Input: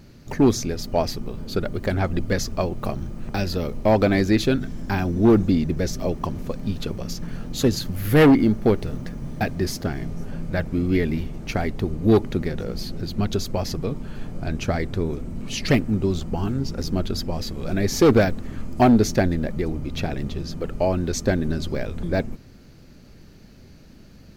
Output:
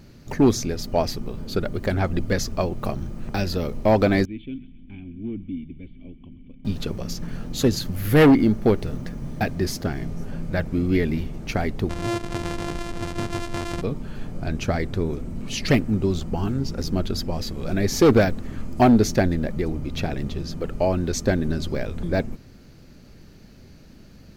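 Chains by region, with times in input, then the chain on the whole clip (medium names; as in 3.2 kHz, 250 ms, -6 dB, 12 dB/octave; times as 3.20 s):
4.25–6.65 s: cascade formant filter i + peaking EQ 300 Hz -9.5 dB 2.8 oct + feedback echo behind a high-pass 130 ms, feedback 51%, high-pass 1.6 kHz, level -14 dB
11.89–13.82 s: sorted samples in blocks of 128 samples + low-pass 8.6 kHz + compression 12:1, threshold -22 dBFS
whole clip: none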